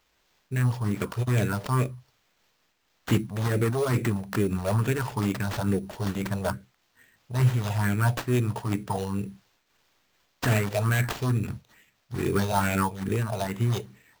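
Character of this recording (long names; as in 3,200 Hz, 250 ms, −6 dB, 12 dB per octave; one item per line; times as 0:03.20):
a quantiser's noise floor 12 bits, dither triangular
phaser sweep stages 4, 2.3 Hz, lowest notch 270–1,000 Hz
aliases and images of a low sample rate 10,000 Hz, jitter 0%
amplitude modulation by smooth noise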